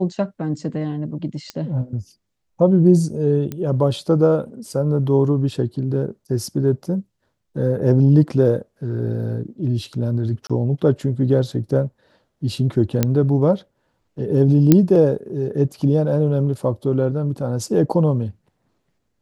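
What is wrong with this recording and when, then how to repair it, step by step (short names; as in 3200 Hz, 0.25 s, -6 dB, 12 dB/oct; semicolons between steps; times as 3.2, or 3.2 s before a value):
1.5 pop -15 dBFS
3.52 pop -15 dBFS
10.47–10.5 gap 26 ms
13.03 pop -3 dBFS
14.72 pop 0 dBFS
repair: de-click; interpolate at 10.47, 26 ms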